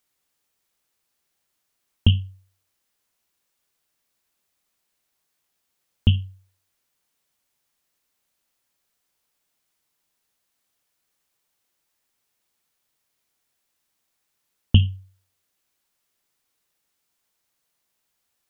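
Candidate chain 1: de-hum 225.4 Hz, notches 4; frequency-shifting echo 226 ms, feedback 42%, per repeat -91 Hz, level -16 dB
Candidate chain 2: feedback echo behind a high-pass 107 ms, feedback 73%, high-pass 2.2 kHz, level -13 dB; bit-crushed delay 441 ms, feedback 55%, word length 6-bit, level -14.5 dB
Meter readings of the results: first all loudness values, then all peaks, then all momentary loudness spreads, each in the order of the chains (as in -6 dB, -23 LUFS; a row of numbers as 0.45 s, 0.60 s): -22.5 LUFS, -25.0 LUFS; -2.0 dBFS, -2.0 dBFS; 18 LU, 23 LU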